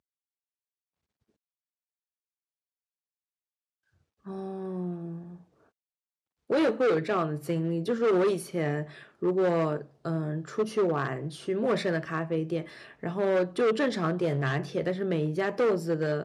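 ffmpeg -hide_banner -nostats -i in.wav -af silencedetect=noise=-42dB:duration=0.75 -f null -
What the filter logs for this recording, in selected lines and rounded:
silence_start: 0.00
silence_end: 4.26 | silence_duration: 4.26
silence_start: 5.36
silence_end: 6.50 | silence_duration: 1.14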